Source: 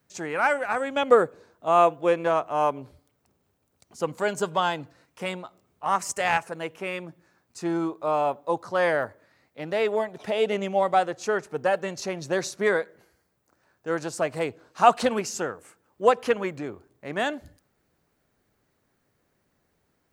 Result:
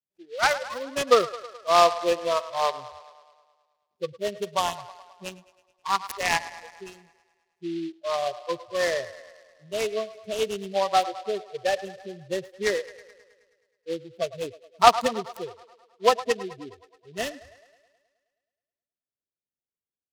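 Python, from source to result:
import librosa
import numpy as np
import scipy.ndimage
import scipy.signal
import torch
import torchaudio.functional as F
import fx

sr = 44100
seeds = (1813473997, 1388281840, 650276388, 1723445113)

y = fx.wiener(x, sr, points=41)
y = fx.noise_reduce_blind(y, sr, reduce_db=28)
y = fx.low_shelf(y, sr, hz=470.0, db=-11.5)
y = fx.echo_wet_bandpass(y, sr, ms=106, feedback_pct=63, hz=1100.0, wet_db=-14)
y = fx.noise_mod_delay(y, sr, seeds[0], noise_hz=3000.0, depth_ms=0.046)
y = F.gain(torch.from_numpy(y), 4.5).numpy()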